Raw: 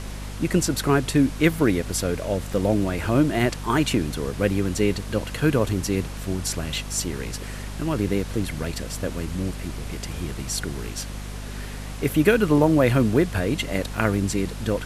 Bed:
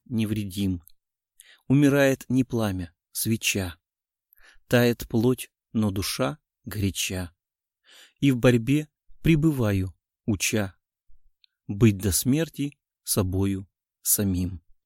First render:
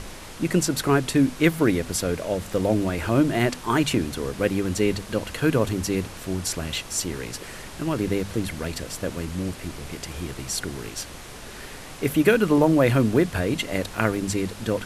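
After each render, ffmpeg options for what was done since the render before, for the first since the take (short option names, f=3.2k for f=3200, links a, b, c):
-af "bandreject=f=50:t=h:w=6,bandreject=f=100:t=h:w=6,bandreject=f=150:t=h:w=6,bandreject=f=200:t=h:w=6,bandreject=f=250:t=h:w=6"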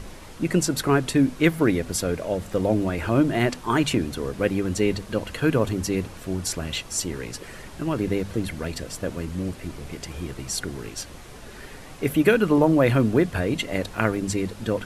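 -af "afftdn=nr=6:nf=-40"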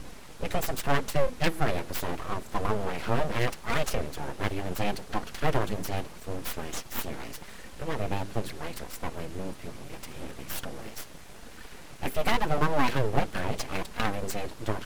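-af "flanger=delay=3.8:depth=5.1:regen=-9:speed=0.78:shape=sinusoidal,aeval=exprs='abs(val(0))':c=same"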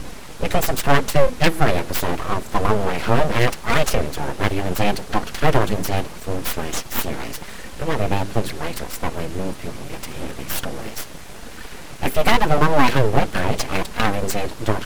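-af "volume=10dB,alimiter=limit=-1dB:level=0:latency=1"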